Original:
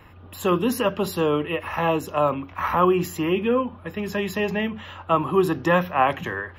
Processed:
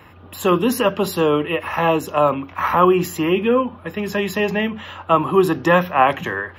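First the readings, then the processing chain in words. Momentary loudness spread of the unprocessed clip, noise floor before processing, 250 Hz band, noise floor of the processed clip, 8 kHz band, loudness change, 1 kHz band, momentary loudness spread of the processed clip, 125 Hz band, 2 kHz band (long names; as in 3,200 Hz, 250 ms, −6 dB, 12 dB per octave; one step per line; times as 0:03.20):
8 LU, −45 dBFS, +4.0 dB, −43 dBFS, +5.0 dB, +4.5 dB, +5.0 dB, 9 LU, +3.0 dB, +5.0 dB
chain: high-pass filter 120 Hz 6 dB per octave
level +5 dB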